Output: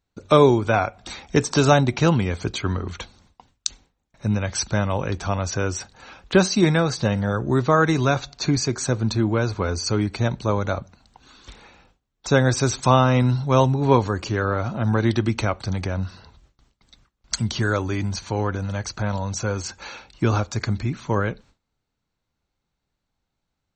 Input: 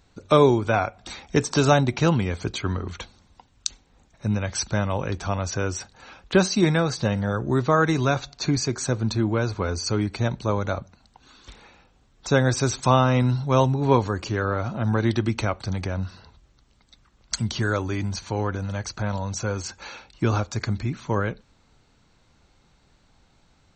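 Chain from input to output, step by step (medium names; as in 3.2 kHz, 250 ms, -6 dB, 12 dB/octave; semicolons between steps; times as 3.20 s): gate with hold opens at -46 dBFS; trim +2 dB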